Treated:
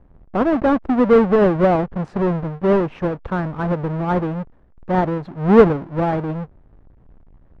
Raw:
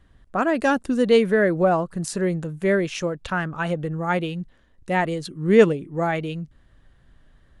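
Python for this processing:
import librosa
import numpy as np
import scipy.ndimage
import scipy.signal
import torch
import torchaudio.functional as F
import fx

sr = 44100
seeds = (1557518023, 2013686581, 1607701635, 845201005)

y = fx.halfwave_hold(x, sr)
y = scipy.signal.sosfilt(scipy.signal.butter(2, 1100.0, 'lowpass', fs=sr, output='sos'), y)
y = y * librosa.db_to_amplitude(1.0)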